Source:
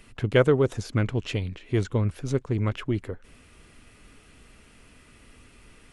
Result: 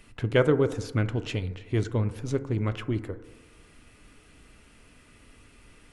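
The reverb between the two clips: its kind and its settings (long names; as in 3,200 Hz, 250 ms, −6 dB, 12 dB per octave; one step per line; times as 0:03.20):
feedback delay network reverb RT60 1.2 s, low-frequency decay 0.9×, high-frequency decay 0.25×, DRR 11.5 dB
level −2 dB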